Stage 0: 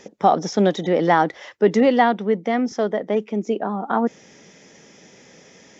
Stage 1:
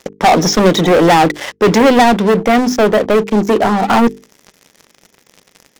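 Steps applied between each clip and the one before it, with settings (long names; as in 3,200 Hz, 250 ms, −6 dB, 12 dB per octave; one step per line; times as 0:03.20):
leveller curve on the samples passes 5
mains-hum notches 50/100/150/200/250/300/350/400/450 Hz
level −1.5 dB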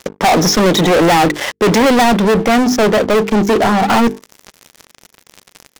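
leveller curve on the samples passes 3
level −6 dB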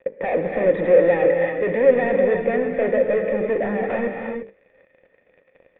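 in parallel at −11.5 dB: sample-rate reduction 2,500 Hz, jitter 0%
on the sum: formant resonators in series e
reverb whose tail is shaped and stops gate 370 ms rising, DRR 3 dB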